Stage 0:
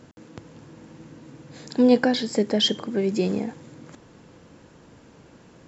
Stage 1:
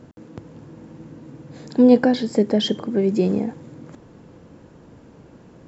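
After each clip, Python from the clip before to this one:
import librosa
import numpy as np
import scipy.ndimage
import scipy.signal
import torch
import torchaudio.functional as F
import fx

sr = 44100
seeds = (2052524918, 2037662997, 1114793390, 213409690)

y = fx.tilt_shelf(x, sr, db=5.0, hz=1200.0)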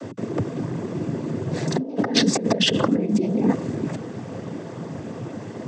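y = fx.over_compress(x, sr, threshold_db=-28.0, ratio=-1.0)
y = fx.noise_vocoder(y, sr, seeds[0], bands=16)
y = y * 10.0 ** (6.5 / 20.0)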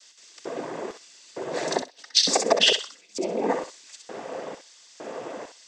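y = fx.filter_lfo_highpass(x, sr, shape='square', hz=1.1, low_hz=560.0, high_hz=4500.0, q=1.3)
y = fx.echo_thinned(y, sr, ms=64, feedback_pct=21, hz=1200.0, wet_db=-5.0)
y = y * 10.0 ** (1.5 / 20.0)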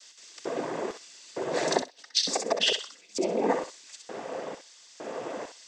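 y = fx.rider(x, sr, range_db=4, speed_s=0.5)
y = y * 10.0 ** (-3.0 / 20.0)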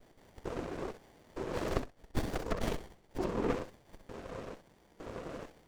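y = fx.running_max(x, sr, window=33)
y = y * 10.0 ** (-5.0 / 20.0)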